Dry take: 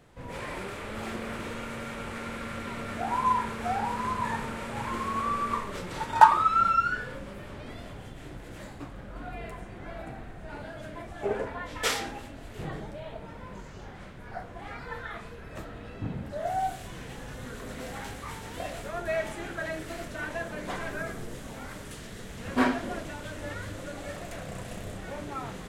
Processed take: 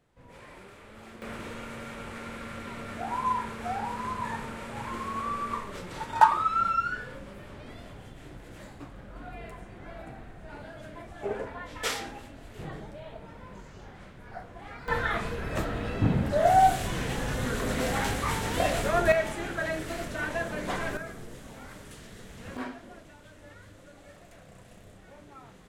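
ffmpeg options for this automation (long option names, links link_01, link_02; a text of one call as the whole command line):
ffmpeg -i in.wav -af "asetnsamples=nb_out_samples=441:pad=0,asendcmd='1.22 volume volume -3dB;14.88 volume volume 10dB;19.12 volume volume 3dB;20.97 volume volume -4.5dB;22.57 volume volume -13dB',volume=-12dB" out.wav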